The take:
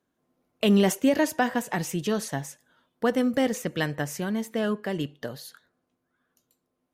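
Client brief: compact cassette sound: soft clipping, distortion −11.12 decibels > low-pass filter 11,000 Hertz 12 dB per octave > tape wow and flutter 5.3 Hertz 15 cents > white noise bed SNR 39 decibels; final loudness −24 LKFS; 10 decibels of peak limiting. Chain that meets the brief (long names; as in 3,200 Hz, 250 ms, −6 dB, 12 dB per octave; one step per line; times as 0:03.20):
brickwall limiter −21 dBFS
soft clipping −29.5 dBFS
low-pass filter 11,000 Hz 12 dB per octave
tape wow and flutter 5.3 Hz 15 cents
white noise bed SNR 39 dB
level +12 dB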